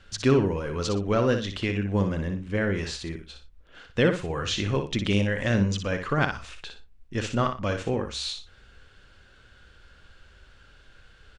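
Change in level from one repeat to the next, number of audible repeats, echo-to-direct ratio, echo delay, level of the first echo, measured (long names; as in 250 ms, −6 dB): −12.0 dB, 2, −7.0 dB, 60 ms, −7.5 dB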